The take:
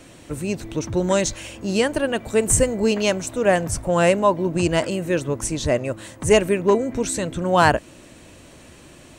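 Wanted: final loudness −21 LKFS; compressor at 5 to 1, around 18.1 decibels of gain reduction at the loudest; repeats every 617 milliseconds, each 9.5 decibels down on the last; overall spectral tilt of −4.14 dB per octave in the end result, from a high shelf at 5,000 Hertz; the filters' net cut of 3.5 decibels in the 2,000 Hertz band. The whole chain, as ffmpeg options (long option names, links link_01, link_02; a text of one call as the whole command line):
ffmpeg -i in.wav -af "equalizer=frequency=2000:width_type=o:gain=-6,highshelf=frequency=5000:gain=8,acompressor=threshold=-31dB:ratio=5,aecho=1:1:617|1234|1851|2468:0.335|0.111|0.0365|0.012,volume=12.5dB" out.wav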